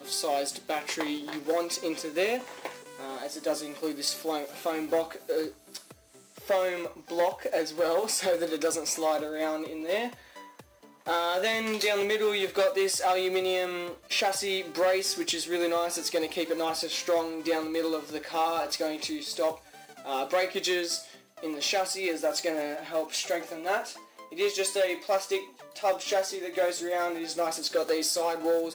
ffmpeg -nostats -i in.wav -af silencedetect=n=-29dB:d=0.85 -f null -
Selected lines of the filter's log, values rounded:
silence_start: 10.07
silence_end: 11.08 | silence_duration: 1.00